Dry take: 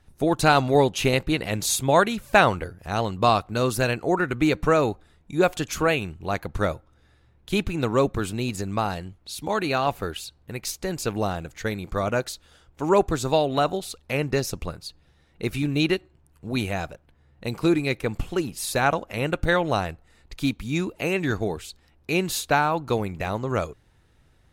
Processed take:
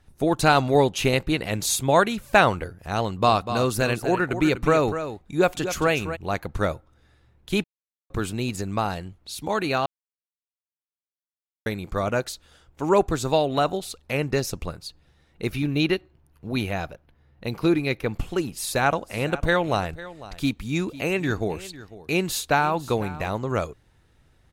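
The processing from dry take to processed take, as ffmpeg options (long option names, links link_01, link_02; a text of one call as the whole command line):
ffmpeg -i in.wav -filter_complex "[0:a]asplit=3[link_01][link_02][link_03];[link_01]afade=type=out:start_time=3.26:duration=0.02[link_04];[link_02]aecho=1:1:246:0.316,afade=type=in:start_time=3.26:duration=0.02,afade=type=out:start_time=6.15:duration=0.02[link_05];[link_03]afade=type=in:start_time=6.15:duration=0.02[link_06];[link_04][link_05][link_06]amix=inputs=3:normalize=0,asettb=1/sr,asplit=3[link_07][link_08][link_09];[link_07]atrim=end=15.524[link_10];[link_08]atrim=start=15.52:end=18.19,asetpts=PTS-STARTPTS,afade=type=in:duration=0.004:curve=qsin,afade=type=out:start_time=2.666:duration=0.004:curve=qsin,equalizer=frequency=7900:width_type=o:width=0.35:gain=-13[link_11];[link_09]atrim=start=18.186[link_12];[link_10][link_11]acrossfade=duration=0.004:curve1=hsin:curve2=qsin[link_13];[link_13][link_12]acrossfade=duration=0.004:curve1=qsin:curve2=hsin,asplit=3[link_14][link_15][link_16];[link_14]afade=type=out:start_time=19.01:duration=0.02[link_17];[link_15]aecho=1:1:500:0.141,afade=type=in:start_time=19.01:duration=0.02,afade=type=out:start_time=23.3:duration=0.02[link_18];[link_16]afade=type=in:start_time=23.3:duration=0.02[link_19];[link_17][link_18][link_19]amix=inputs=3:normalize=0,asplit=5[link_20][link_21][link_22][link_23][link_24];[link_20]atrim=end=7.64,asetpts=PTS-STARTPTS,afade=type=out:start_time=7.636:duration=0.004:curve=hsin[link_25];[link_21]atrim=start=7.64:end=8.1,asetpts=PTS-STARTPTS,volume=0[link_26];[link_22]atrim=start=8.1:end=9.86,asetpts=PTS-STARTPTS,afade=type=in:duration=0.004:curve=hsin,afade=type=out:start_time=1.756:duration=0.004:curve=hsin[link_27];[link_23]atrim=start=9.86:end=11.66,asetpts=PTS-STARTPTS,volume=0[link_28];[link_24]atrim=start=11.66,asetpts=PTS-STARTPTS,afade=type=in:duration=0.004:curve=hsin[link_29];[link_25][link_26][link_27][link_28][link_29]concat=n=5:v=0:a=1" out.wav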